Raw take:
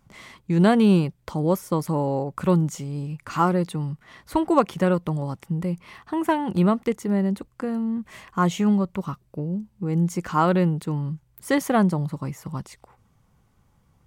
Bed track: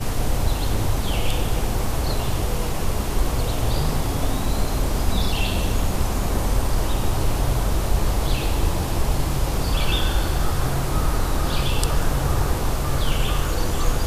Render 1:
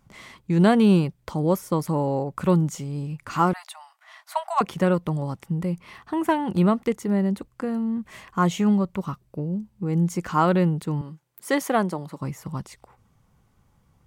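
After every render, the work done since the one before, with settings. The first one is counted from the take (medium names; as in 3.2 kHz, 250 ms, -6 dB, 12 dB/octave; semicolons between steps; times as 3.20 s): 3.53–4.61 s: brick-wall FIR high-pass 600 Hz; 11.01–12.21 s: high-pass 280 Hz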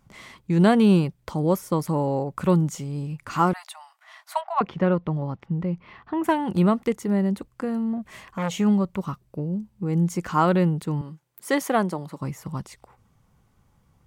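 4.41–6.24 s: distance through air 250 m; 7.93–8.57 s: transformer saturation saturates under 1.2 kHz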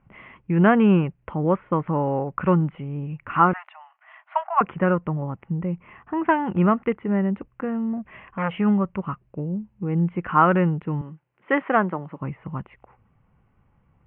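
steep low-pass 2.9 kHz 72 dB/octave; dynamic bell 1.4 kHz, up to +7 dB, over -40 dBFS, Q 1.4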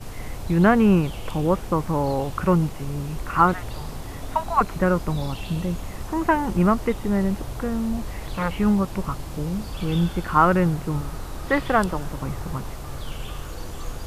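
add bed track -11.5 dB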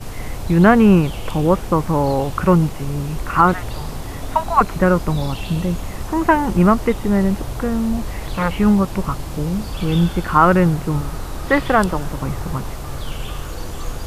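trim +5.5 dB; peak limiter -1 dBFS, peak gain reduction 3 dB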